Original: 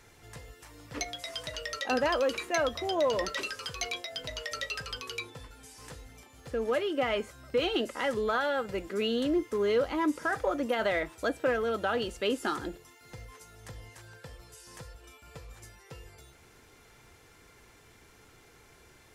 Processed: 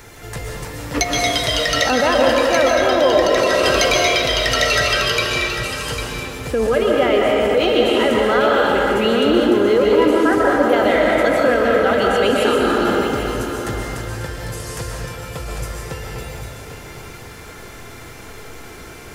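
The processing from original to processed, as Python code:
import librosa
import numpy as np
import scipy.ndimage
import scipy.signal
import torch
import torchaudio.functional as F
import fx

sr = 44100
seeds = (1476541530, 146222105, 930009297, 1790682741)

p1 = fx.peak_eq(x, sr, hz=9700.0, db=-9.5, octaves=2.7)
p2 = fx.rev_freeverb(p1, sr, rt60_s=2.3, hf_ratio=0.75, predelay_ms=90, drr_db=-2.5)
p3 = fx.over_compress(p2, sr, threshold_db=-33.0, ratio=-0.5)
p4 = p2 + F.gain(torch.from_numpy(p3), -3.0).numpy()
p5 = fx.high_shelf(p4, sr, hz=5000.0, db=11.0)
p6 = p5 + fx.echo_single(p5, sr, ms=799, db=-9.5, dry=0)
y = F.gain(torch.from_numpy(p6), 9.0).numpy()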